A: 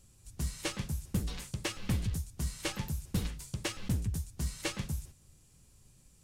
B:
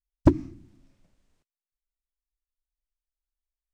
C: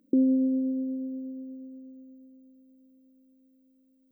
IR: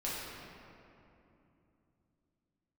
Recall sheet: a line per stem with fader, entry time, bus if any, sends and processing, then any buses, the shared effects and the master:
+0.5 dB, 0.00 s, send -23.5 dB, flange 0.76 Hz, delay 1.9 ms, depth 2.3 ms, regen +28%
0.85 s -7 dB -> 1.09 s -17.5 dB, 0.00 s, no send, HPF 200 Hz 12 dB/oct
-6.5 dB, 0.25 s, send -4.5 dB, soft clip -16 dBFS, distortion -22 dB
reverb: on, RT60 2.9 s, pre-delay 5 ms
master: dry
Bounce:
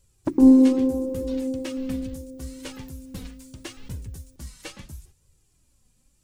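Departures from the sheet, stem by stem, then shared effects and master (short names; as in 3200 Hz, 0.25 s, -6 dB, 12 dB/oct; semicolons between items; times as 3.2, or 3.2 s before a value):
stem A: send off; stem C -6.5 dB -> +0.5 dB; reverb return +8.0 dB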